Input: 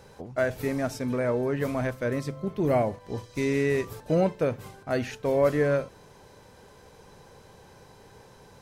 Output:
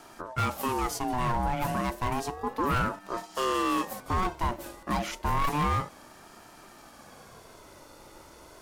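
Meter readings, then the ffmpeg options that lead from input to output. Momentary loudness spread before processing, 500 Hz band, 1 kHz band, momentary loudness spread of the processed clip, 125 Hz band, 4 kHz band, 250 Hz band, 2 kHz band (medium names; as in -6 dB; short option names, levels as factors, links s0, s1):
8 LU, -10.0 dB, +8.0 dB, 7 LU, -2.5 dB, +6.0 dB, -4.0 dB, -1.0 dB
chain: -filter_complex "[0:a]acrossover=split=240|5400[s0][s1][s2];[s0]alimiter=level_in=2.51:limit=0.0631:level=0:latency=1,volume=0.398[s3];[s3][s1][s2]amix=inputs=3:normalize=0,volume=15.8,asoftclip=hard,volume=0.0631,highshelf=f=6500:g=9,aeval=exprs='val(0)*sin(2*PI*620*n/s+620*0.3/0.31*sin(2*PI*0.31*n/s))':c=same,volume=1.5"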